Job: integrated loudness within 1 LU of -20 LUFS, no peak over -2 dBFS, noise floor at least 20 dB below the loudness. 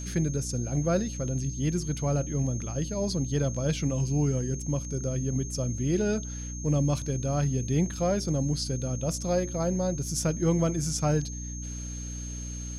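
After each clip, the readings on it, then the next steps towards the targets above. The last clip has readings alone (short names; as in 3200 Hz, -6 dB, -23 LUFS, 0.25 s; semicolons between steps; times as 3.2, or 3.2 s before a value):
hum 60 Hz; harmonics up to 300 Hz; hum level -34 dBFS; steady tone 6400 Hz; tone level -40 dBFS; loudness -29.0 LUFS; peak -13.5 dBFS; loudness target -20.0 LUFS
-> de-hum 60 Hz, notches 5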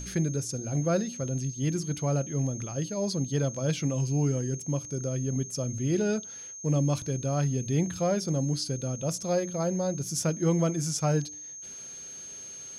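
hum none; steady tone 6400 Hz; tone level -40 dBFS
-> notch 6400 Hz, Q 30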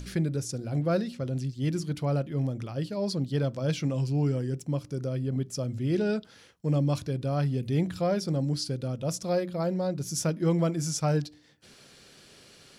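steady tone none; loudness -29.5 LUFS; peak -15.0 dBFS; loudness target -20.0 LUFS
-> gain +9.5 dB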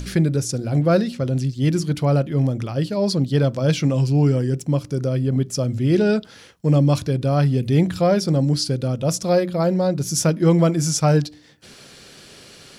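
loudness -20.0 LUFS; peak -5.5 dBFS; noise floor -45 dBFS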